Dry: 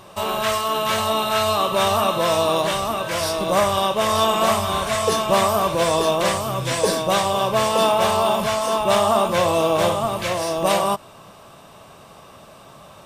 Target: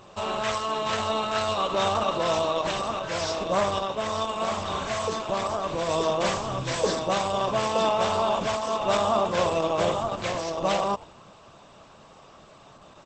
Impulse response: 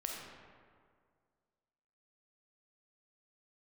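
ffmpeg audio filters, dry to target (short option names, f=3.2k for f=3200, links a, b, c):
-filter_complex "[0:a]asplit=3[a][b][c];[a]afade=t=out:st=3.78:d=0.02[d];[b]acompressor=threshold=-20dB:ratio=2.5,afade=t=in:st=3.78:d=0.02,afade=t=out:st=5.88:d=0.02[e];[c]afade=t=in:st=5.88:d=0.02[f];[d][e][f]amix=inputs=3:normalize=0,asplit=4[g][h][i][j];[h]adelay=86,afreqshift=-130,volume=-19dB[k];[i]adelay=172,afreqshift=-260,volume=-28.9dB[l];[j]adelay=258,afreqshift=-390,volume=-38.8dB[m];[g][k][l][m]amix=inputs=4:normalize=0,volume=-4.5dB" -ar 48000 -c:a libopus -b:a 12k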